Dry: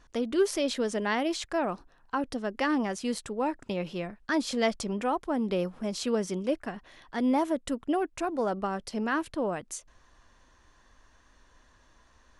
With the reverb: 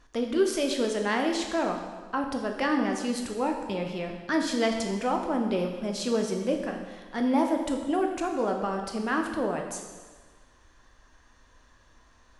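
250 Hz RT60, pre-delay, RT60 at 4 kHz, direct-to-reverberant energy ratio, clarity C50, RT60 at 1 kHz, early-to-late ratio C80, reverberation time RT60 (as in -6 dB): 1.4 s, 8 ms, 1.3 s, 2.5 dB, 5.5 dB, 1.4 s, 7.0 dB, 1.4 s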